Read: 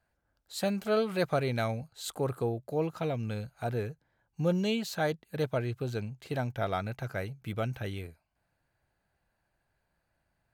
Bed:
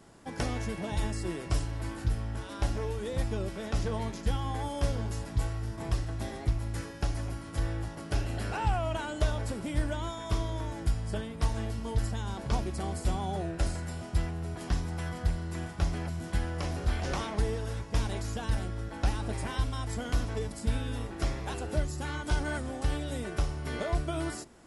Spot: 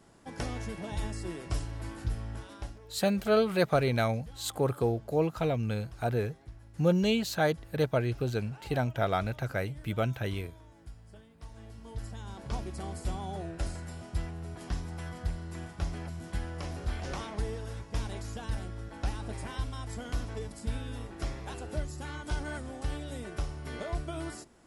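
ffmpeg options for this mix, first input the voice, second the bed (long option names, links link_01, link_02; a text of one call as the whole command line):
ffmpeg -i stem1.wav -i stem2.wav -filter_complex "[0:a]adelay=2400,volume=3dB[link_01];[1:a]volume=11dB,afade=type=out:start_time=2.34:duration=0.45:silence=0.16788,afade=type=in:start_time=11.45:duration=1.28:silence=0.188365[link_02];[link_01][link_02]amix=inputs=2:normalize=0" out.wav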